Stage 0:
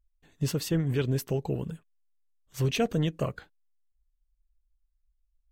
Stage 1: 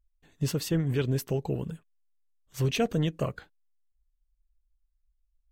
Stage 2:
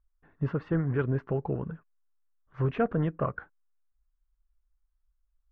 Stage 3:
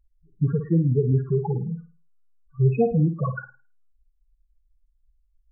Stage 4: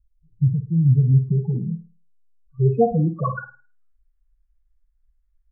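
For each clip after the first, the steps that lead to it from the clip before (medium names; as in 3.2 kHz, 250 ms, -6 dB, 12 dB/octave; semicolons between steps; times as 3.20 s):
no audible change
four-pole ladder low-pass 1.7 kHz, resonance 45%; peaking EQ 1.1 kHz +2.5 dB 0.64 oct; trim +8 dB
loudest bins only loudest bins 4; flutter echo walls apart 9.2 m, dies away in 0.35 s; trim +8.5 dB
low-pass sweep 120 Hz -> 1.7 kHz, 0.71–3.85 s; doubling 44 ms -13 dB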